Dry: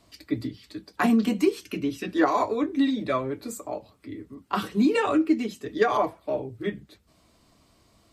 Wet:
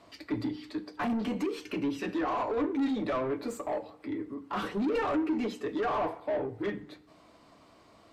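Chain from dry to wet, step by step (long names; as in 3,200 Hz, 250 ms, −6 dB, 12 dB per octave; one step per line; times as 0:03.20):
brickwall limiter −16.5 dBFS, peak gain reduction 9 dB
0:01.19–0:02.53: downward compressor, threshold −25 dBFS, peak gain reduction 5.5 dB
mid-hump overdrive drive 21 dB, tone 1,000 Hz, clips at −16.5 dBFS
soft clipping −20 dBFS, distortion −19 dB
feedback delay network reverb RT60 0.82 s, low-frequency decay 1.05×, high-frequency decay 0.75×, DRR 13.5 dB
level −4 dB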